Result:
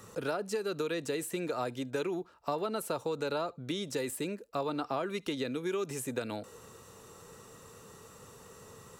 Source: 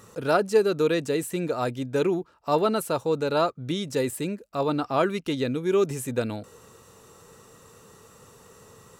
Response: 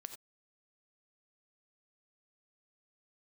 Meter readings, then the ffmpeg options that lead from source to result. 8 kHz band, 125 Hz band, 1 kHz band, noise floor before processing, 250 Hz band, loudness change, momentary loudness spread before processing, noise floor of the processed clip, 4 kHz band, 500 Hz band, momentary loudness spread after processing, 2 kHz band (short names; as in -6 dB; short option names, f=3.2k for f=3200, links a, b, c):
-4.5 dB, -11.0 dB, -9.0 dB, -54 dBFS, -9.0 dB, -9.5 dB, 7 LU, -55 dBFS, -6.0 dB, -10.0 dB, 18 LU, -7.0 dB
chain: -filter_complex "[0:a]acompressor=threshold=-23dB:ratio=6,asplit=2[a][b];[1:a]atrim=start_sample=2205,atrim=end_sample=3528[c];[b][c]afir=irnorm=-1:irlink=0,volume=-10dB[d];[a][d]amix=inputs=2:normalize=0,acrossover=split=260|860[e][f][g];[e]acompressor=threshold=-44dB:ratio=4[h];[f]acompressor=threshold=-31dB:ratio=4[i];[g]acompressor=threshold=-35dB:ratio=4[j];[h][i][j]amix=inputs=3:normalize=0,volume=-2.5dB"